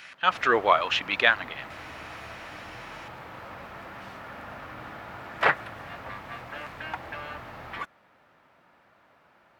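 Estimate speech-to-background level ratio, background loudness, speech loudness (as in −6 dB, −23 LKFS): 12.5 dB, −36.0 LKFS, −23.5 LKFS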